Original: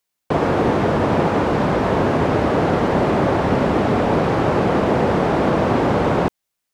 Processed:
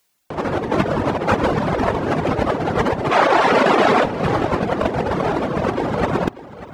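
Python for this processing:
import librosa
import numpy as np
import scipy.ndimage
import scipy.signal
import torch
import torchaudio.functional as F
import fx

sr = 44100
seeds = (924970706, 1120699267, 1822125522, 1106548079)

y = fx.weighting(x, sr, curve='A', at=(3.11, 4.05))
y = fx.dereverb_blind(y, sr, rt60_s=1.6)
y = fx.over_compress(y, sr, threshold_db=-25.0, ratio=-0.5)
y = y + 10.0 ** (-16.0 / 20.0) * np.pad(y, (int(591 * sr / 1000.0), 0))[:len(y)]
y = y * 10.0 ** (7.5 / 20.0)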